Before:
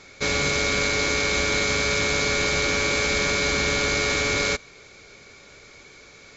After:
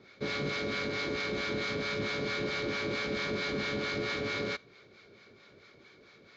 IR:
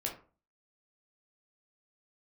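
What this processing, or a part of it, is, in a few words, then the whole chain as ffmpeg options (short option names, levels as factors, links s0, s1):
guitar amplifier with harmonic tremolo: -filter_complex "[0:a]acrossover=split=690[s0][s1];[s0]aeval=exprs='val(0)*(1-0.7/2+0.7/2*cos(2*PI*4.5*n/s))':c=same[s2];[s1]aeval=exprs='val(0)*(1-0.7/2-0.7/2*cos(2*PI*4.5*n/s))':c=same[s3];[s2][s3]amix=inputs=2:normalize=0,asoftclip=type=tanh:threshold=0.106,highpass=75,equalizer=f=75:t=q:w=4:g=-10,equalizer=f=110:t=q:w=4:g=4,equalizer=f=210:t=q:w=4:g=6,equalizer=f=360:t=q:w=4:g=5,equalizer=f=850:t=q:w=4:g=-3,equalizer=f=2500:t=q:w=4:g=-5,lowpass=f=4400:w=0.5412,lowpass=f=4400:w=1.3066,volume=0.562"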